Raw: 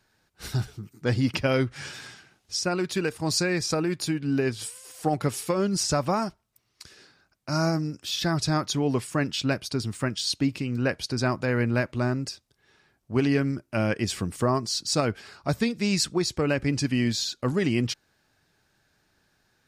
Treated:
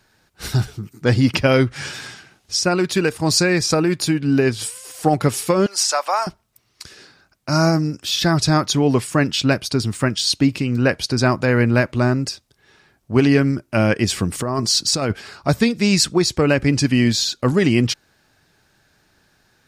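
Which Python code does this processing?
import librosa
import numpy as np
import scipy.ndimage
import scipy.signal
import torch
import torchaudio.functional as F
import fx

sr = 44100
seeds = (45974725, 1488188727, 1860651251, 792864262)

y = fx.highpass(x, sr, hz=650.0, slope=24, at=(5.66, 6.27))
y = fx.over_compress(y, sr, threshold_db=-28.0, ratio=-1.0, at=(14.32, 15.13))
y = y * 10.0 ** (8.5 / 20.0)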